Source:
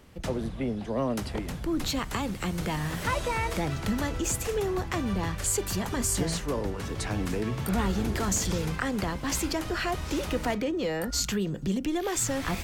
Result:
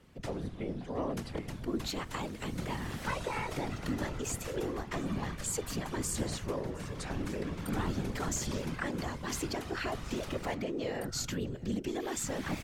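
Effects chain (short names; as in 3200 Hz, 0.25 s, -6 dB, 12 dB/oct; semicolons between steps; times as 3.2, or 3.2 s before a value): high shelf 10000 Hz -5.5 dB; echo 0.716 s -22 dB; whisperiser; gain -6.5 dB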